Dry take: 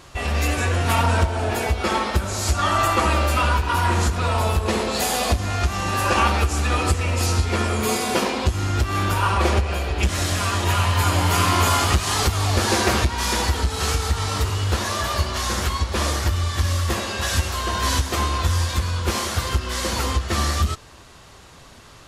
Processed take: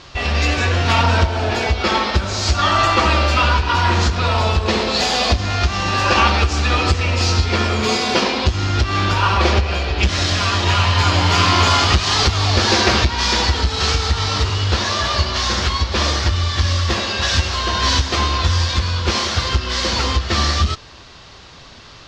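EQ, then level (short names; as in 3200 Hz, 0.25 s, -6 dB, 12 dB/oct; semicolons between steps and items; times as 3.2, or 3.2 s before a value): air absorption 190 m; bell 5100 Hz +13 dB 1.7 oct; high shelf 10000 Hz +3.5 dB; +3.5 dB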